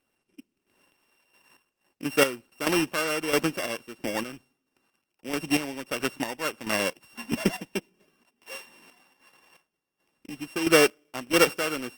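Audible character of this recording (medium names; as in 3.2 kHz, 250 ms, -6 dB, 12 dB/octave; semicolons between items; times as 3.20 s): a buzz of ramps at a fixed pitch in blocks of 16 samples; chopped level 1.5 Hz, depth 65%, duty 35%; Opus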